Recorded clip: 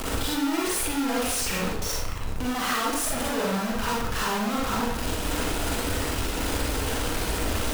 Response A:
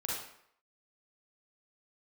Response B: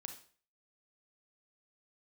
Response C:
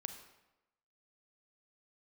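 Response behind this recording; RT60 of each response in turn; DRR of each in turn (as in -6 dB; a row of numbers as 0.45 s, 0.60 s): A; 0.70 s, 0.45 s, 1.0 s; -5.0 dB, 5.0 dB, 7.0 dB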